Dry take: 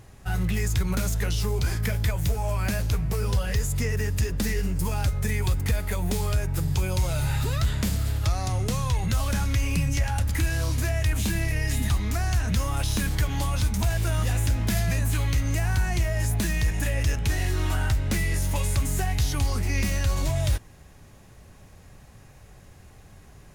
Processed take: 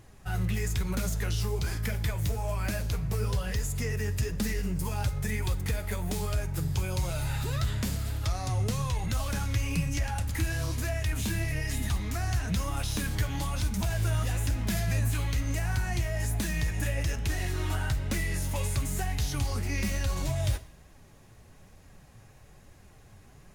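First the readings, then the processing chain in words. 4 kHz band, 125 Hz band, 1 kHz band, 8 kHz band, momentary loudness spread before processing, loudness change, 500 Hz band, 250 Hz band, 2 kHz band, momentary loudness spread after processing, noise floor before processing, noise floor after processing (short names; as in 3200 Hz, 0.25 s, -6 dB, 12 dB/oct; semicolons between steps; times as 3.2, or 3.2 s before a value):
-4.0 dB, -4.5 dB, -4.0 dB, -4.0 dB, 2 LU, -4.5 dB, -4.0 dB, -4.0 dB, -4.0 dB, 2 LU, -50 dBFS, -54 dBFS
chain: flange 1.1 Hz, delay 2.8 ms, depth 7.1 ms, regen +59%; Schroeder reverb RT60 0.58 s, DRR 16 dB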